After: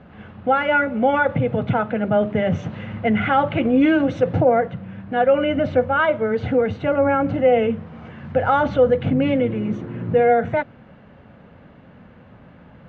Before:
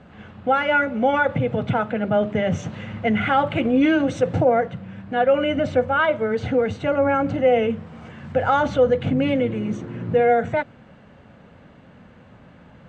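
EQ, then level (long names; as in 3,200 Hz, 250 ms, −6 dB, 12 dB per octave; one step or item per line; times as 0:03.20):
high-frequency loss of the air 190 metres
+2.0 dB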